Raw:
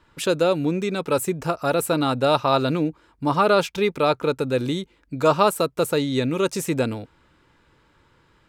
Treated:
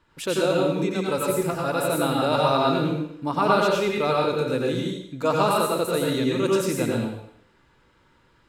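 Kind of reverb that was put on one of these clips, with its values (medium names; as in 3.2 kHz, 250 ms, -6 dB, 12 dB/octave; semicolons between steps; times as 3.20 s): plate-style reverb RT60 0.68 s, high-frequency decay 1×, pre-delay 80 ms, DRR -3 dB; trim -5.5 dB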